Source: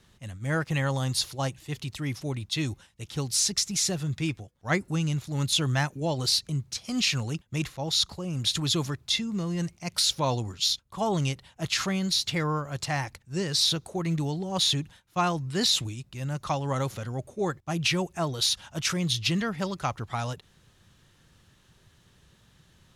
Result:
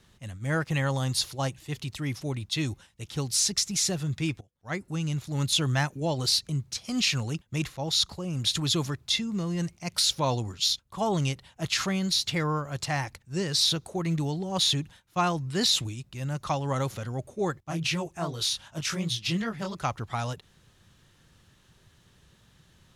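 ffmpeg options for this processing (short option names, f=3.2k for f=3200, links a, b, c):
-filter_complex "[0:a]asettb=1/sr,asplit=3[a][b][c];[a]atrim=end=17.634[d];[b]atrim=start=17.63:end=19.75,asetpts=PTS-STARTPTS,afade=t=in:d=0.004:c=qsin,afade=t=out:st=2.116:d=0.004:c=qsin,flanger=delay=17.5:depth=7.7:speed=2.7[e];[c]atrim=start=19.746[f];[d][e]acrossfade=d=0.004:c1=hsin:c2=qsin[g];[g][f]acrossfade=d=0.004:c1=qsin:c2=hsin,asplit=2[h][i];[h]atrim=end=4.41,asetpts=PTS-STARTPTS,afade=t=out:st=4.406:d=0.004:c=hsin:silence=0.125893[j];[i]atrim=start=4.41,asetpts=PTS-STARTPTS,afade=t=in:d=0.89:silence=0.125893[k];[j][k]concat=n=2:v=0:a=1"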